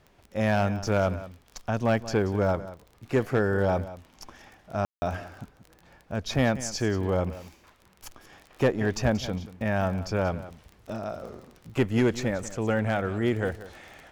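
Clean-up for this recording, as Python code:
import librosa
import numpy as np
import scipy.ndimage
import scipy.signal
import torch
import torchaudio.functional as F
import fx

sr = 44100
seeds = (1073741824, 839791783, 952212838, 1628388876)

y = fx.fix_declip(x, sr, threshold_db=-15.0)
y = fx.fix_declick_ar(y, sr, threshold=6.5)
y = fx.fix_ambience(y, sr, seeds[0], print_start_s=7.52, print_end_s=8.02, start_s=4.85, end_s=5.02)
y = fx.fix_echo_inverse(y, sr, delay_ms=183, level_db=-15.5)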